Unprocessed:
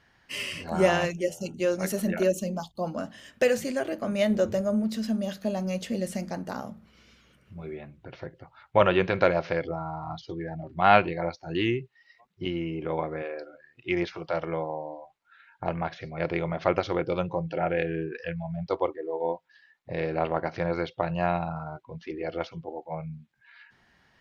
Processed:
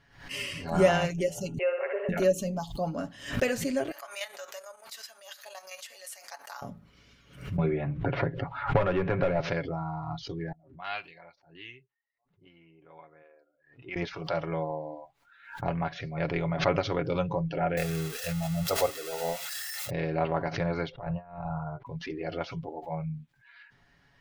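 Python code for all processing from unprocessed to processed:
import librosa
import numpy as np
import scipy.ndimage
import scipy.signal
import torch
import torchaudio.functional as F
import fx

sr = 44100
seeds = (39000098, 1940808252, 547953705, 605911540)

y = fx.chain(x, sr, fx.cheby1_bandpass(low_hz=410.0, high_hz=2700.0, order=5),
    fx.room_flutter(wall_m=10.8, rt60_s=0.67),
    fx.band_squash(depth_pct=40), at=(1.58, 2.09))
y = fx.chain(y, sr, fx.highpass(hz=850.0, slope=24),
    fx.high_shelf(hz=7500.0, db=9.0),
    fx.level_steps(step_db=10), at=(3.91, 6.62))
y = fx.chain(y, sr, fx.clip_hard(threshold_db=-19.0),
    fx.lowpass(hz=2000.0, slope=12),
    fx.band_squash(depth_pct=100), at=(7.58, 9.4))
y = fx.chain(y, sr, fx.env_lowpass(base_hz=500.0, full_db=-16.5),
    fx.pre_emphasis(coefficient=0.97), at=(10.52, 13.96))
y = fx.chain(y, sr, fx.crossing_spikes(level_db=-19.5),
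    fx.high_shelf(hz=4900.0, db=-8.5),
    fx.comb(ms=1.5, depth=0.63), at=(17.77, 19.9))
y = fx.chain(y, sr, fx.peak_eq(hz=250.0, db=-14.5, octaves=0.92),
    fx.over_compress(threshold_db=-35.0, ratio=-0.5),
    fx.lowpass(hz=1200.0, slope=12), at=(20.91, 21.86))
y = fx.low_shelf(y, sr, hz=98.0, db=10.5)
y = y + 0.54 * np.pad(y, (int(7.1 * sr / 1000.0), 0))[:len(y)]
y = fx.pre_swell(y, sr, db_per_s=110.0)
y = F.gain(torch.from_numpy(y), -3.0).numpy()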